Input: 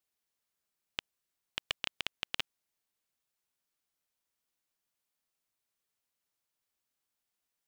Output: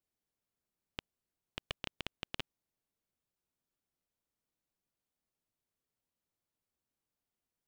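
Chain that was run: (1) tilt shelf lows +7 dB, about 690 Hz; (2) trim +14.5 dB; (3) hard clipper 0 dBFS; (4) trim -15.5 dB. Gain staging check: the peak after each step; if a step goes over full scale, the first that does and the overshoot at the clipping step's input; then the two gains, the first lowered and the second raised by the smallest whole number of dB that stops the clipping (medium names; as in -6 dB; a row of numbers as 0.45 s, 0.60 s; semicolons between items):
-17.0 dBFS, -2.5 dBFS, -2.5 dBFS, -18.0 dBFS; nothing clips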